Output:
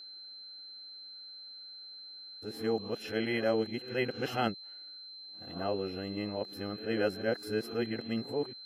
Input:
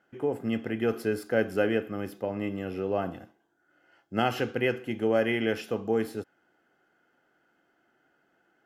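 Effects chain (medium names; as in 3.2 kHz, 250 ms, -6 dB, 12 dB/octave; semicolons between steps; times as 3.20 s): reverse the whole clip; whistle 4.1 kHz -41 dBFS; attacks held to a fixed rise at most 180 dB/s; trim -4.5 dB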